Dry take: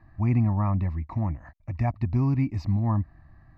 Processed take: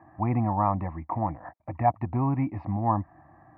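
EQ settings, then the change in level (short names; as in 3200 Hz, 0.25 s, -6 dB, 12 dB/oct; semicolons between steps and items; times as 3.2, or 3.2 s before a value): dynamic EQ 370 Hz, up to -6 dB, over -40 dBFS, Q 0.76; speaker cabinet 130–2200 Hz, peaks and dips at 320 Hz +9 dB, 500 Hz +10 dB, 750 Hz +8 dB; bell 930 Hz +8.5 dB 0.99 oct; 0.0 dB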